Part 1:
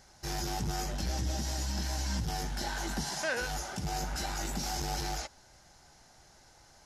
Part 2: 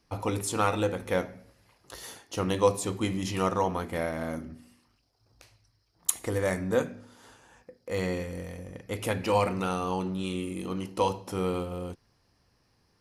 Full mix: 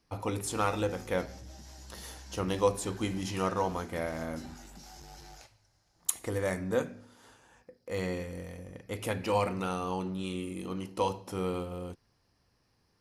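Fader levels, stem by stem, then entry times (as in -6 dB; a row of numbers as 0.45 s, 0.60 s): -15.5 dB, -3.5 dB; 0.20 s, 0.00 s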